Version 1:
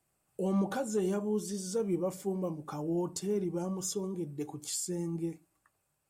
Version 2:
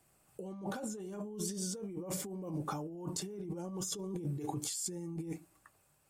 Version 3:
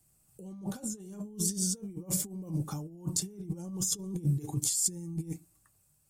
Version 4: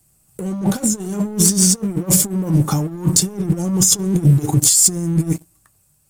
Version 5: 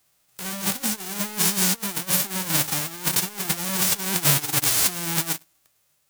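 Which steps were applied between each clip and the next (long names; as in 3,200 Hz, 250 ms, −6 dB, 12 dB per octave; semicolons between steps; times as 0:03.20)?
brickwall limiter −26.5 dBFS, peak gain reduction 5 dB; compressor whose output falls as the input rises −42 dBFS, ratio −1; level +1.5 dB
bass and treble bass +14 dB, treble +14 dB; expander for the loud parts 1.5 to 1, over −39 dBFS; level −1.5 dB
in parallel at −2 dB: downward compressor, threshold −39 dBFS, peak gain reduction 15 dB; on the sum: leveller curve on the samples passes 2; level +8.5 dB
spectral envelope flattened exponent 0.1; level −7.5 dB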